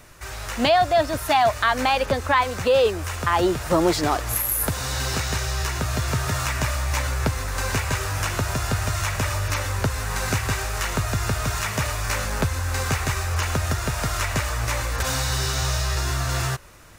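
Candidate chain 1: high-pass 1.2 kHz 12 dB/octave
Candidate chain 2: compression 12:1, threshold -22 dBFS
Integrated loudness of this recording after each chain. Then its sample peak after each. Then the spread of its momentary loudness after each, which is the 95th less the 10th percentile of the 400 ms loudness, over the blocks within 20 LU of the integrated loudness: -27.5 LUFS, -27.0 LUFS; -8.5 dBFS, -10.5 dBFS; 6 LU, 2 LU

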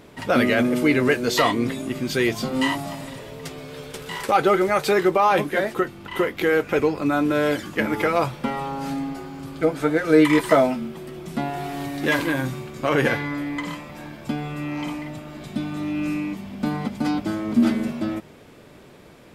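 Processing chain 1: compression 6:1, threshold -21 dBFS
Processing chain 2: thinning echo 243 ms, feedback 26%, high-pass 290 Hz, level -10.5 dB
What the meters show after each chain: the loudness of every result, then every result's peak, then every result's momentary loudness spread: -27.5 LUFS, -22.5 LUFS; -10.5 dBFS, -3.0 dBFS; 9 LU, 15 LU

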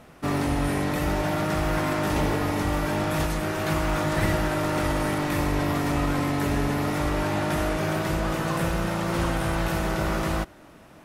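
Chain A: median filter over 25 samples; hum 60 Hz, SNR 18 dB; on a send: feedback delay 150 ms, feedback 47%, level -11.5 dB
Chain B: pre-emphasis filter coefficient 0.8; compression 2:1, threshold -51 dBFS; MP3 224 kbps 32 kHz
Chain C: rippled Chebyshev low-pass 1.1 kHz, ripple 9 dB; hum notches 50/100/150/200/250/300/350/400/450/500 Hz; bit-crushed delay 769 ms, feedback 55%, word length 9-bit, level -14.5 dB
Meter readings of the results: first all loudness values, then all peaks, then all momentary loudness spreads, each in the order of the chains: -26.5 LUFS, -46.0 LUFS, -31.5 LUFS; -13.0 dBFS, -31.5 dBFS, -17.5 dBFS; 2 LU, 1 LU, 4 LU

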